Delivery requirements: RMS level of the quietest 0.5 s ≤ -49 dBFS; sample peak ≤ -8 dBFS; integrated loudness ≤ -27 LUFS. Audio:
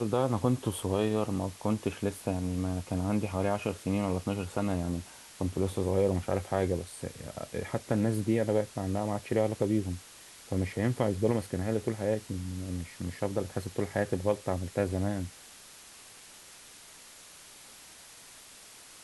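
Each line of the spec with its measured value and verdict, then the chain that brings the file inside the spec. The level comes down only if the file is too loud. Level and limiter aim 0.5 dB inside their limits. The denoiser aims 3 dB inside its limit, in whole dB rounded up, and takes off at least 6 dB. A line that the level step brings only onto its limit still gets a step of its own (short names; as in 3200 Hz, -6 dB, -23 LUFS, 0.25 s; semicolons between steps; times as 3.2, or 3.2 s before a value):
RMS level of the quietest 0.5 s -52 dBFS: OK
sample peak -12.0 dBFS: OK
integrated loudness -31.5 LUFS: OK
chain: none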